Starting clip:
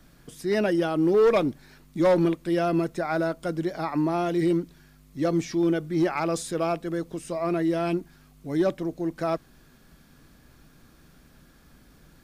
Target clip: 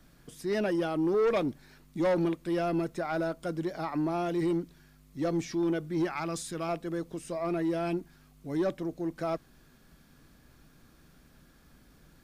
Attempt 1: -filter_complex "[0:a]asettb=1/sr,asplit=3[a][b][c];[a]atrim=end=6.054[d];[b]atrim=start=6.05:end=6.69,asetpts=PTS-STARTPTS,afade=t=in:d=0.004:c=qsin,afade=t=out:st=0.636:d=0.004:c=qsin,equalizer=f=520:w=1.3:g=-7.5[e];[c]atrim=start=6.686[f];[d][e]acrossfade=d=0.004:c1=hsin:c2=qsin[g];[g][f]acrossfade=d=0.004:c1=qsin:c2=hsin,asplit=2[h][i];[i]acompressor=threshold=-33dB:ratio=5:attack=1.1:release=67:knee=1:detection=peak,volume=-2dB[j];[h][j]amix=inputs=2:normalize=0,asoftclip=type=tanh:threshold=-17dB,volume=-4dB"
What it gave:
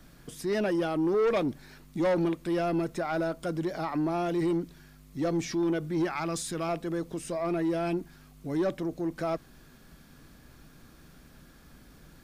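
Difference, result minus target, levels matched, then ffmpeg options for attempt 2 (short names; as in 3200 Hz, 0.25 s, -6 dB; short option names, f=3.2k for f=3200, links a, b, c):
compressor: peak gain reduction +14 dB
-filter_complex "[0:a]asettb=1/sr,asplit=3[a][b][c];[a]atrim=end=6.054[d];[b]atrim=start=6.05:end=6.69,asetpts=PTS-STARTPTS,afade=t=in:d=0.004:c=qsin,afade=t=out:st=0.636:d=0.004:c=qsin,equalizer=f=520:w=1.3:g=-7.5[e];[c]atrim=start=6.686[f];[d][e]acrossfade=d=0.004:c1=hsin:c2=qsin[g];[g][f]acrossfade=d=0.004:c1=qsin:c2=hsin,asoftclip=type=tanh:threshold=-17dB,volume=-4dB"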